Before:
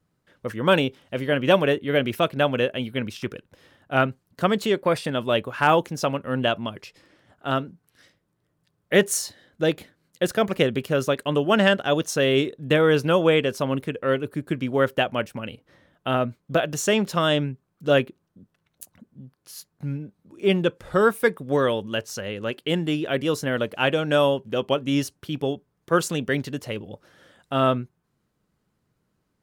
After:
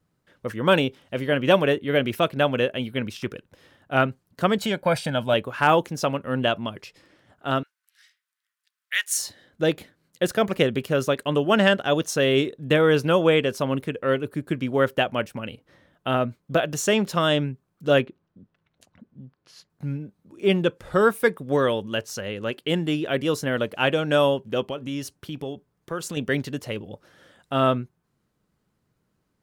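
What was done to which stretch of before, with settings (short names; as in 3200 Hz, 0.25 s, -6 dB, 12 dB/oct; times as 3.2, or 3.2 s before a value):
4.58–5.34 comb 1.3 ms, depth 66%
7.63–9.19 HPF 1500 Hz 24 dB/oct
18.01–19.7 LPF 3800 Hz
24.69–26.17 compressor 2.5:1, threshold -30 dBFS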